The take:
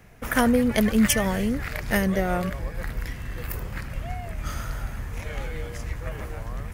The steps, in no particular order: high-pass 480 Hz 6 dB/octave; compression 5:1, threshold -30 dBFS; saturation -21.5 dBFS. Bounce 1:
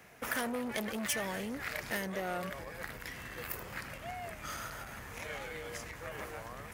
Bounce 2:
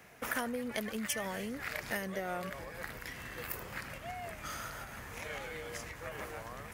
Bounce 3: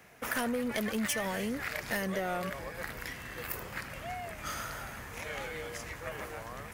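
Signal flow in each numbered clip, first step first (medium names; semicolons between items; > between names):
saturation > compression > high-pass; compression > high-pass > saturation; high-pass > saturation > compression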